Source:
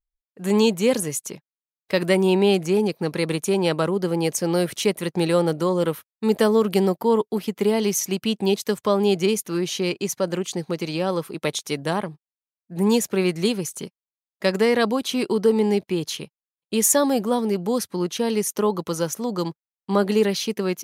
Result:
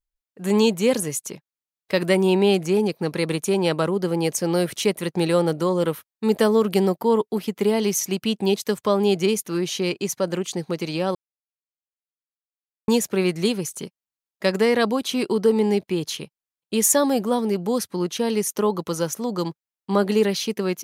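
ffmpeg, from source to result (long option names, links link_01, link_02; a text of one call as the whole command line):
ffmpeg -i in.wav -filter_complex "[0:a]asplit=3[link_01][link_02][link_03];[link_01]atrim=end=11.15,asetpts=PTS-STARTPTS,afade=type=out:start_time=11.146:duration=0.004:curve=hsin[link_04];[link_02]atrim=start=11.15:end=12.88,asetpts=PTS-STARTPTS,volume=0[link_05];[link_03]atrim=start=12.88,asetpts=PTS-STARTPTS,afade=type=in:duration=0.004:curve=hsin[link_06];[link_04][link_05][link_06]concat=n=3:v=0:a=1" out.wav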